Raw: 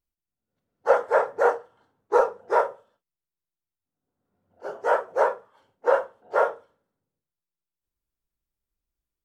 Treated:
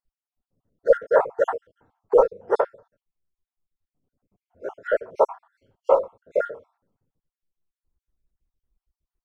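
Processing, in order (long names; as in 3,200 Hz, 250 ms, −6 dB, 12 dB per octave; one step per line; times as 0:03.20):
time-frequency cells dropped at random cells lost 55%
spectral tilt −2.5 dB per octave
level +2 dB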